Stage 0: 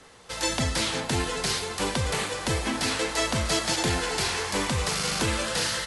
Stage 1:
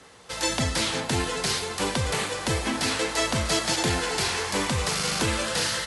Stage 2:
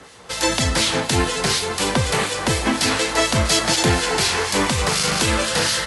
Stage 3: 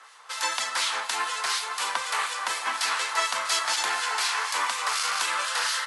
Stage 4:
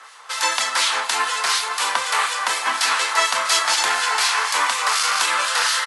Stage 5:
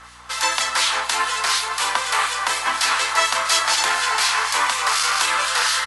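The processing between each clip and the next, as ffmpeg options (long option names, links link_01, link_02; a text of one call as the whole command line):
ffmpeg -i in.wav -af "highpass=53,volume=1dB" out.wav
ffmpeg -i in.wav -filter_complex "[0:a]acrossover=split=2300[link_01][link_02];[link_01]aeval=exprs='val(0)*(1-0.5/2+0.5/2*cos(2*PI*4.1*n/s))':channel_layout=same[link_03];[link_02]aeval=exprs='val(0)*(1-0.5/2-0.5/2*cos(2*PI*4.1*n/s))':channel_layout=same[link_04];[link_03][link_04]amix=inputs=2:normalize=0,volume=9dB" out.wav
ffmpeg -i in.wav -af "highpass=frequency=1100:width_type=q:width=2.2,volume=-8dB" out.wav
ffmpeg -i in.wav -filter_complex "[0:a]asplit=2[link_01][link_02];[link_02]adelay=27,volume=-11.5dB[link_03];[link_01][link_03]amix=inputs=2:normalize=0,volume=7dB" out.wav
ffmpeg -i in.wav -af "aeval=exprs='val(0)+0.00251*(sin(2*PI*60*n/s)+sin(2*PI*2*60*n/s)/2+sin(2*PI*3*60*n/s)/3+sin(2*PI*4*60*n/s)/4+sin(2*PI*5*60*n/s)/5)':channel_layout=same" out.wav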